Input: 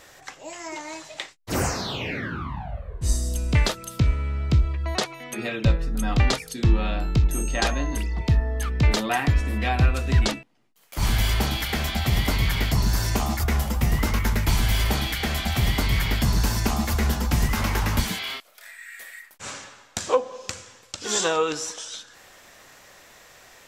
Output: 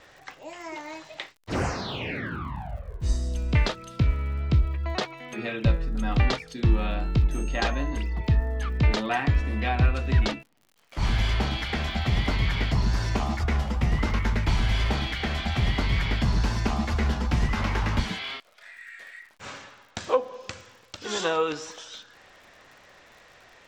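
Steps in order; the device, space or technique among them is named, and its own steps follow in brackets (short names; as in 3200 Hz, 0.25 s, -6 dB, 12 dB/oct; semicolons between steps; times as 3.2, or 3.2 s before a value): lo-fi chain (LPF 4100 Hz 12 dB/oct; wow and flutter 18 cents; crackle 67/s -43 dBFS); gain -2 dB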